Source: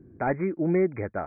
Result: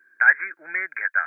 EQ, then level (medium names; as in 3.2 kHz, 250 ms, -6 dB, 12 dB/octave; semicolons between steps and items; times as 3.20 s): resonant high-pass 1.6 kHz, resonance Q 16; treble shelf 2.2 kHz +11 dB; 0.0 dB